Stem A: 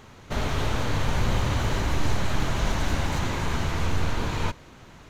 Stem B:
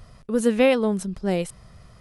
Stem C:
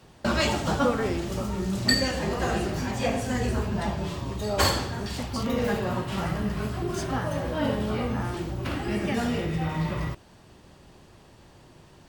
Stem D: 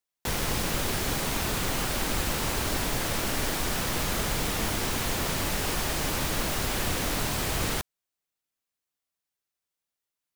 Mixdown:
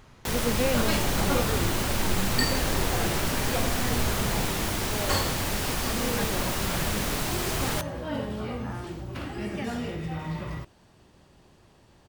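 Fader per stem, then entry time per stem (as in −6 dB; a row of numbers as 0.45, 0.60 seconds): −6.5, −9.5, −5.0, −0.5 decibels; 0.00, 0.00, 0.50, 0.00 seconds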